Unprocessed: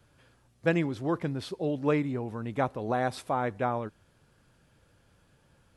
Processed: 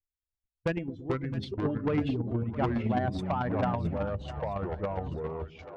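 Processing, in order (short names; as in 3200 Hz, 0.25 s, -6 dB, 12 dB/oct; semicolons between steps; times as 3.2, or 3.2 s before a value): per-bin expansion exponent 2; gate -47 dBFS, range -26 dB; LPF 3100 Hz 12 dB/oct; low shelf 74 Hz +12 dB; in parallel at +1 dB: limiter -26.5 dBFS, peak gain reduction 10.5 dB; on the sum: chopper 9.1 Hz, depth 60%, duty 15%; 0.72–1.35 resonator 250 Hz, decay 0.17 s, harmonics all, mix 70%; soft clip -27 dBFS, distortion -10 dB; split-band echo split 550 Hz, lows 0.116 s, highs 0.664 s, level -13 dB; echoes that change speed 0.265 s, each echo -4 st, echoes 2; gain +4.5 dB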